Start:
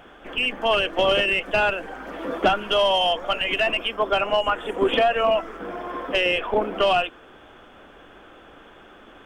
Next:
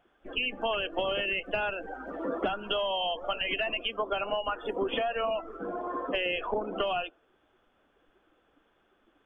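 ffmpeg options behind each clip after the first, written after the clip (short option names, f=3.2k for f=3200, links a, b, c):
-af "afftdn=nr=20:nf=-32,acompressor=threshold=-26dB:ratio=6,volume=-1.5dB"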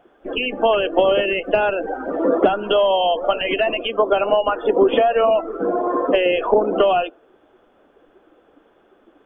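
-af "equalizer=f=440:t=o:w=2.6:g=11.5,volume=5dB"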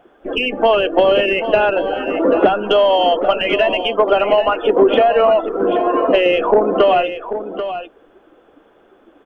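-af "acontrast=23,aecho=1:1:788:0.299,volume=-1dB"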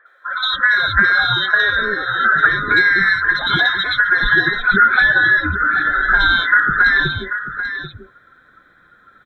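-filter_complex "[0:a]afftfilt=real='real(if(lt(b,960),b+48*(1-2*mod(floor(b/48),2)),b),0)':imag='imag(if(lt(b,960),b+48*(1-2*mod(floor(b/48),2)),b),0)':win_size=2048:overlap=0.75,acrossover=split=490|2300[a][b][c];[c]adelay=60[d];[a]adelay=250[e];[e][b][d]amix=inputs=3:normalize=0,volume=1dB"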